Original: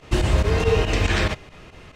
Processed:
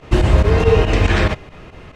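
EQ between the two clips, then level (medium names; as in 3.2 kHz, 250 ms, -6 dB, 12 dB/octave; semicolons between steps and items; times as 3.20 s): treble shelf 3 kHz -9.5 dB; +6.5 dB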